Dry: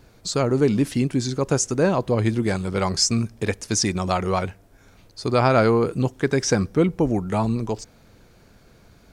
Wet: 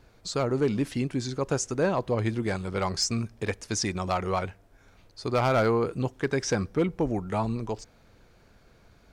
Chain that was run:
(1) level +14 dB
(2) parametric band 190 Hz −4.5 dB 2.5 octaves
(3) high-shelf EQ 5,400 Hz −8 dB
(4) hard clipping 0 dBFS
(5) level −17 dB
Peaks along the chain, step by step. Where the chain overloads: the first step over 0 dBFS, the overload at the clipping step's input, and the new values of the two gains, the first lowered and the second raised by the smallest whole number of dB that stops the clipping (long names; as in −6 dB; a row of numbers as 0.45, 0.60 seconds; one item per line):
+9.0, +8.5, +8.0, 0.0, −17.0 dBFS
step 1, 8.0 dB
step 1 +6 dB, step 5 −9 dB